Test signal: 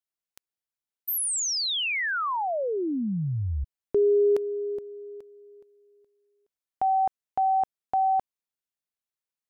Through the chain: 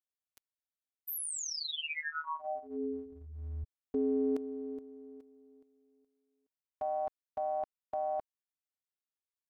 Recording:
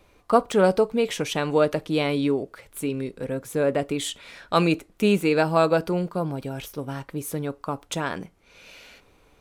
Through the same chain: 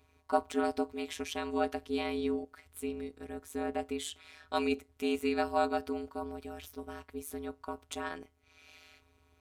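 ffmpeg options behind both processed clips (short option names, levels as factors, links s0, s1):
-af "afftfilt=real='hypot(re,im)*cos(PI*b)':imag='0':win_size=512:overlap=0.75,aeval=exprs='val(0)*sin(2*PI*77*n/s)':c=same,volume=0.631"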